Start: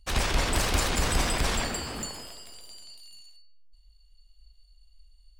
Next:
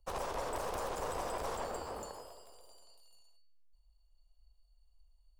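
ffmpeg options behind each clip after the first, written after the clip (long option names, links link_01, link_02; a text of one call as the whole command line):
ffmpeg -i in.wav -filter_complex "[0:a]acrossover=split=120|5000[link_01][link_02][link_03];[link_01]acompressor=threshold=-38dB:ratio=4[link_04];[link_02]acompressor=threshold=-30dB:ratio=4[link_05];[link_03]acompressor=threshold=-36dB:ratio=4[link_06];[link_04][link_05][link_06]amix=inputs=3:normalize=0,equalizer=frequency=125:width_type=o:width=1:gain=-5,equalizer=frequency=250:width_type=o:width=1:gain=-7,equalizer=frequency=500:width_type=o:width=1:gain=11,equalizer=frequency=1000:width_type=o:width=1:gain=9,equalizer=frequency=2000:width_type=o:width=1:gain=-10,equalizer=frequency=4000:width_type=o:width=1:gain=-6,equalizer=frequency=8000:width_type=o:width=1:gain=-3,aeval=exprs='(tanh(15.8*val(0)+0.55)-tanh(0.55))/15.8':channel_layout=same,volume=-7dB" out.wav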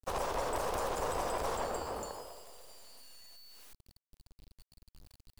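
ffmpeg -i in.wav -af "acrusher=bits=9:mix=0:aa=0.000001,volume=3.5dB" out.wav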